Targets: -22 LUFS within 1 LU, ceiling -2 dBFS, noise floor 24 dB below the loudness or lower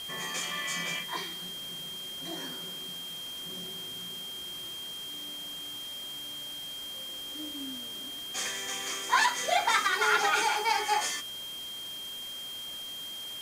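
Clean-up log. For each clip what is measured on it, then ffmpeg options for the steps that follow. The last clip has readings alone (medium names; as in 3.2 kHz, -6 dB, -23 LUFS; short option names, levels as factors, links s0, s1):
steady tone 3.2 kHz; tone level -38 dBFS; noise floor -40 dBFS; noise floor target -56 dBFS; loudness -32.0 LUFS; peak level -12.0 dBFS; loudness target -22.0 LUFS
-> -af "bandreject=f=3200:w=30"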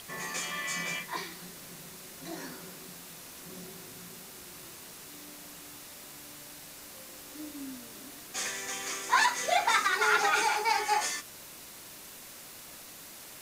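steady tone not found; noise floor -48 dBFS; noise floor target -54 dBFS
-> -af "afftdn=nr=6:nf=-48"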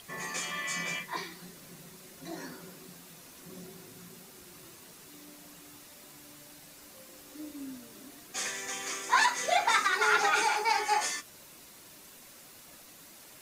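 noise floor -53 dBFS; loudness -29.0 LUFS; peak level -12.0 dBFS; loudness target -22.0 LUFS
-> -af "volume=2.24"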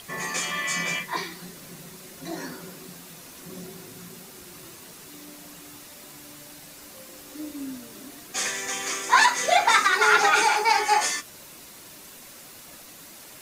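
loudness -22.0 LUFS; peak level -5.0 dBFS; noise floor -46 dBFS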